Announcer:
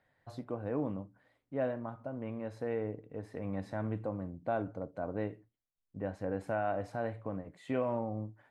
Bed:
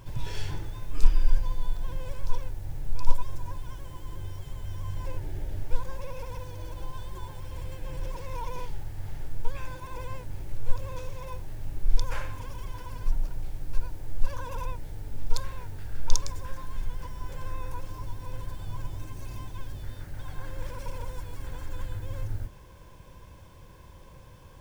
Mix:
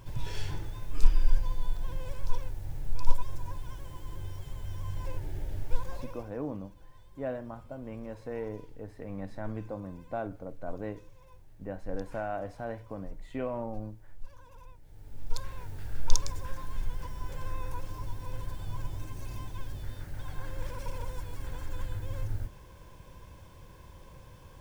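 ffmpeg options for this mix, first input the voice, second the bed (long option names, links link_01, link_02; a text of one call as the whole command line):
ffmpeg -i stem1.wav -i stem2.wav -filter_complex "[0:a]adelay=5650,volume=-1.5dB[link_01];[1:a]volume=15dB,afade=type=out:start_time=5.91:duration=0.41:silence=0.158489,afade=type=in:start_time=14.82:duration=1.04:silence=0.141254[link_02];[link_01][link_02]amix=inputs=2:normalize=0" out.wav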